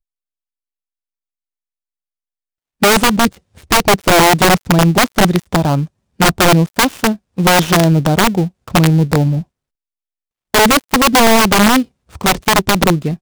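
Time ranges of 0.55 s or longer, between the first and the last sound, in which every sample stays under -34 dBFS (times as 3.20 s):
9.43–10.54 s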